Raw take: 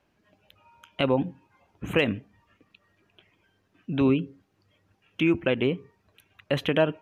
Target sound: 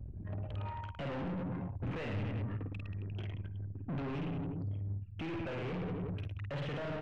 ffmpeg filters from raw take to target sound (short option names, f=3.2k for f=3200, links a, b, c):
-filter_complex "[0:a]equalizer=f=410:t=o:w=2.2:g=3,areverse,acompressor=threshold=-35dB:ratio=6,areverse,aecho=1:1:50|110|182|268.4|372.1:0.631|0.398|0.251|0.158|0.1,acrossover=split=110|630[a][b][c];[a]acompressor=mode=upward:threshold=-47dB:ratio=2.5[d];[b]alimiter=level_in=12.5dB:limit=-24dB:level=0:latency=1:release=385,volume=-12.5dB[e];[d][e][c]amix=inputs=3:normalize=0,anlmdn=0.000251,aeval=exprs='(tanh(501*val(0)+0.3)-tanh(0.3))/501':c=same,lowpass=2.4k,equalizer=f=110:t=o:w=1.3:g=7,volume=15.5dB"